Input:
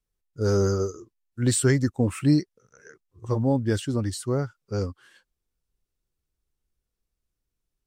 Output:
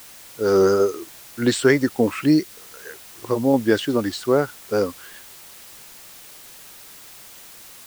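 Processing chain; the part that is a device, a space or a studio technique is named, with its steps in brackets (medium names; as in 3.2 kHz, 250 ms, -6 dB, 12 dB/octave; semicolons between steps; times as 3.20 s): dictaphone (band-pass 310–4000 Hz; level rider gain up to 11.5 dB; wow and flutter; white noise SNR 21 dB); 2.24–3.54 s: dynamic bell 860 Hz, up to -6 dB, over -31 dBFS, Q 0.71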